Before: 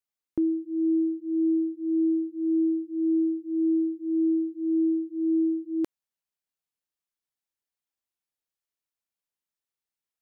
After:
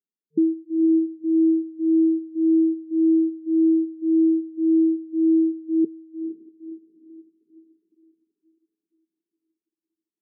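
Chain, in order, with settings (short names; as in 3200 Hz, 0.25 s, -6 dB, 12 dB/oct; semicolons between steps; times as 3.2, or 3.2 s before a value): diffused feedback echo 0.501 s, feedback 44%, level -11 dB; reverb removal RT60 0.72 s; FFT band-pass 160–450 Hz; gain +6 dB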